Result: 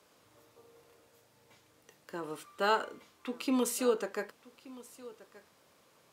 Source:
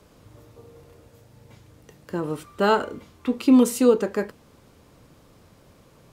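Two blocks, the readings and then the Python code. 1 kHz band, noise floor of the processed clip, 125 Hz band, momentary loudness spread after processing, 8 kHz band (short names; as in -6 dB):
-7.5 dB, -67 dBFS, -18.5 dB, 20 LU, -5.0 dB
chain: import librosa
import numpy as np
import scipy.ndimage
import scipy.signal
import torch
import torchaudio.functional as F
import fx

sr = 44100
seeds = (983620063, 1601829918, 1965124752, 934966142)

p1 = fx.highpass(x, sr, hz=820.0, slope=6)
p2 = p1 + fx.echo_single(p1, sr, ms=1177, db=-19.5, dry=0)
y = p2 * 10.0 ** (-5.0 / 20.0)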